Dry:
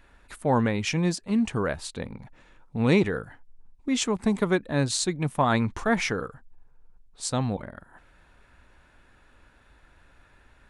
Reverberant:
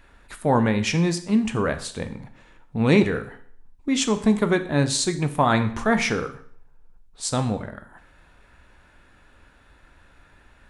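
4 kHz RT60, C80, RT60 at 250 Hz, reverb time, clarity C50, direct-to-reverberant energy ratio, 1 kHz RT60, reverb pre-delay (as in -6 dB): 0.55 s, 17.0 dB, 0.55 s, 0.55 s, 13.5 dB, 8.5 dB, 0.55 s, 14 ms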